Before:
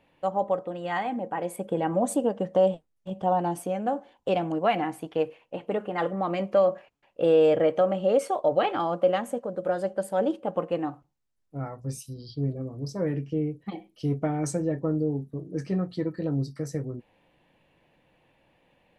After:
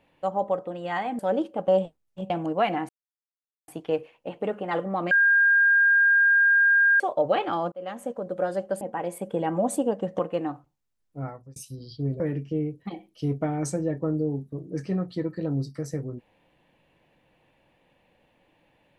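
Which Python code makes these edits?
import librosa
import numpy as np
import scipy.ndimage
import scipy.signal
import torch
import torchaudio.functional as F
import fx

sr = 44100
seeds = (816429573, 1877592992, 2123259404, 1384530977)

y = fx.edit(x, sr, fx.swap(start_s=1.19, length_s=1.38, other_s=10.08, other_length_s=0.49),
    fx.cut(start_s=3.19, length_s=1.17),
    fx.insert_silence(at_s=4.95, length_s=0.79),
    fx.bleep(start_s=6.38, length_s=1.89, hz=1610.0, db=-15.5),
    fx.fade_in_span(start_s=8.99, length_s=0.43),
    fx.fade_out_span(start_s=11.64, length_s=0.3),
    fx.cut(start_s=12.58, length_s=0.43), tone=tone)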